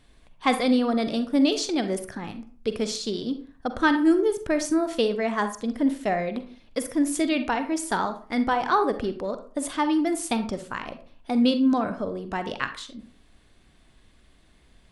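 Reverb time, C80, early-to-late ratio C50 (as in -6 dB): 0.45 s, 16.0 dB, 11.0 dB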